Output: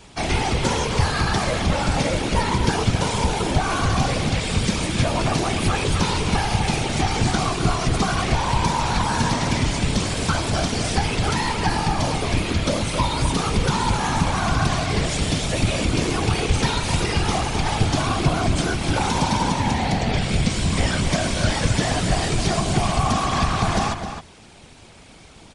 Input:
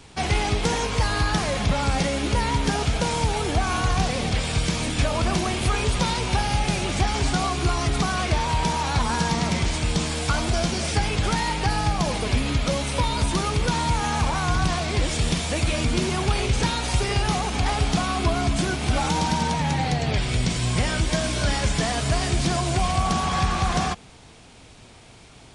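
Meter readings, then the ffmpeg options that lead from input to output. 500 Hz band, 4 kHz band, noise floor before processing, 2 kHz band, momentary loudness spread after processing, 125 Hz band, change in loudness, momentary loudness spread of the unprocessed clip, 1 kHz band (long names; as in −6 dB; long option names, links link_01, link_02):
+2.5 dB, +2.0 dB, −47 dBFS, +2.0 dB, 2 LU, +2.0 dB, +2.0 dB, 1 LU, +2.0 dB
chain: -filter_complex "[0:a]afftfilt=real='hypot(re,im)*cos(2*PI*random(0))':imag='hypot(re,im)*sin(2*PI*random(1))':win_size=512:overlap=0.75,asplit=2[link_01][link_02];[link_02]adelay=262.4,volume=-8dB,highshelf=frequency=4000:gain=-5.9[link_03];[link_01][link_03]amix=inputs=2:normalize=0,volume=7.5dB"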